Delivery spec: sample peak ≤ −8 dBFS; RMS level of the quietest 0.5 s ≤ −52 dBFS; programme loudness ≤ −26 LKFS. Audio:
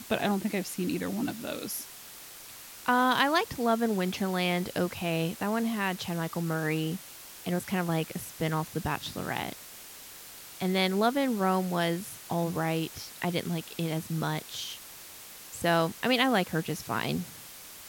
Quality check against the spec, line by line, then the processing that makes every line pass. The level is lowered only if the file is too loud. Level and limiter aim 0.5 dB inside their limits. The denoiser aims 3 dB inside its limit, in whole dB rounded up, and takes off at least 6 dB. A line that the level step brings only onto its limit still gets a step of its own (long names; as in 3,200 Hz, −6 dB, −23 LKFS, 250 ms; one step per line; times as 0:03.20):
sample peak −9.5 dBFS: in spec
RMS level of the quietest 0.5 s −47 dBFS: out of spec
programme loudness −30.0 LKFS: in spec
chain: broadband denoise 8 dB, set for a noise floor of −47 dBFS